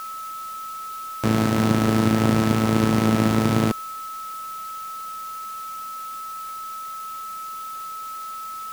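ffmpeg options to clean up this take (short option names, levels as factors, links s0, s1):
-af "bandreject=f=1300:w=30,afwtdn=0.0063"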